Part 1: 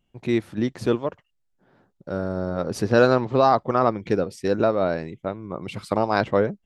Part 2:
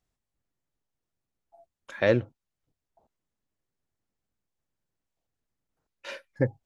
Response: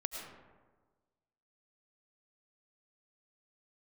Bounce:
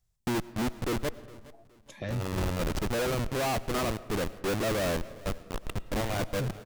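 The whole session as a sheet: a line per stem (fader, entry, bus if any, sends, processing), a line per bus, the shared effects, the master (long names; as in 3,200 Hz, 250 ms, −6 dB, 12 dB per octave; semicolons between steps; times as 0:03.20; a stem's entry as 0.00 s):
−4.0 dB, 0.00 s, send −15.5 dB, echo send −22 dB, comparator with hysteresis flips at −27.5 dBFS
−3.0 dB, 0.00 s, no send, no echo send, bass and treble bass +12 dB, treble +8 dB; notch on a step sequencer 4.9 Hz 260–5,300 Hz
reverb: on, RT60 1.4 s, pre-delay 65 ms
echo: repeating echo 415 ms, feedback 33%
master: soft clipping −15 dBFS, distortion −18 dB; brickwall limiter −25.5 dBFS, peak gain reduction 10 dB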